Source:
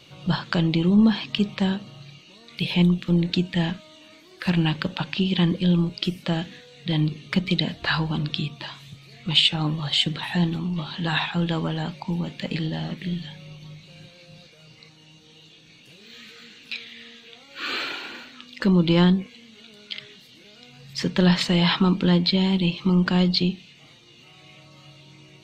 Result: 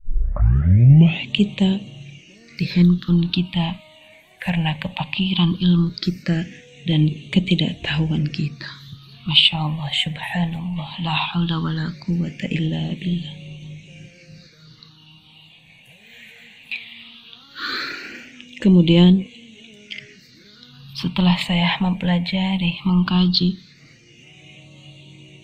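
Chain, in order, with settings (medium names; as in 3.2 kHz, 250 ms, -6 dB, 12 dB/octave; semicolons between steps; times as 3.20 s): tape start-up on the opening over 1.38 s; phase shifter stages 6, 0.17 Hz, lowest notch 340–1400 Hz; trim +5 dB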